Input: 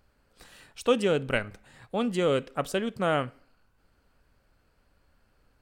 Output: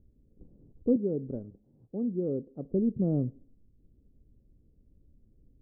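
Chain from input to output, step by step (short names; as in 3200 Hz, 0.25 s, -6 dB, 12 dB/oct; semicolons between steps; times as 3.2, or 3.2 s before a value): inverse Chebyshev low-pass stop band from 2100 Hz, stop band 80 dB; 0.96–2.71 tilt +3.5 dB/oct; gain +6 dB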